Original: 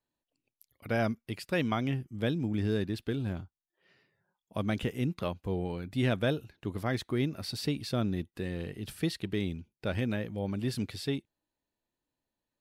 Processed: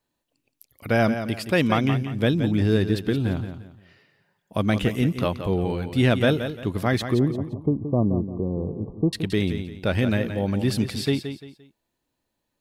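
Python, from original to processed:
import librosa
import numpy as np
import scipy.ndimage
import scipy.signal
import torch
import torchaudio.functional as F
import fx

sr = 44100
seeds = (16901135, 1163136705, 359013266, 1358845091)

p1 = fx.brickwall_lowpass(x, sr, high_hz=1200.0, at=(7.14, 9.13))
p2 = p1 + fx.echo_feedback(p1, sr, ms=173, feedback_pct=31, wet_db=-9.5, dry=0)
y = p2 * librosa.db_to_amplitude(9.0)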